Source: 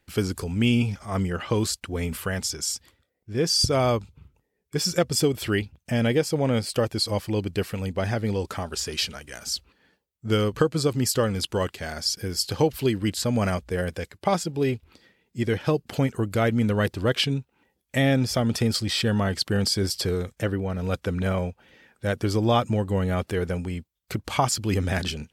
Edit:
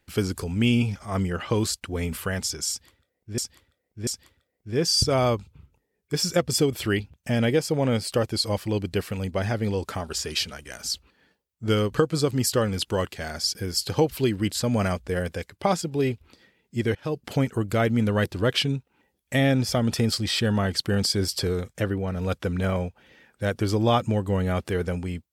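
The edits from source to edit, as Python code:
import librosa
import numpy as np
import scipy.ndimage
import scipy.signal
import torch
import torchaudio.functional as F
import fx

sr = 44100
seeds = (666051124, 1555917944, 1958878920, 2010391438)

y = fx.edit(x, sr, fx.repeat(start_s=2.69, length_s=0.69, count=3),
    fx.fade_in_from(start_s=15.57, length_s=0.32, floor_db=-21.0), tone=tone)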